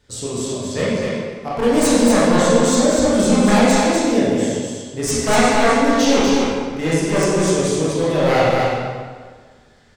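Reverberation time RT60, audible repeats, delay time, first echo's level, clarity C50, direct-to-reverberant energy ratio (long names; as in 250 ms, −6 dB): 1.6 s, 1, 246 ms, −3.5 dB, −4.5 dB, −9.5 dB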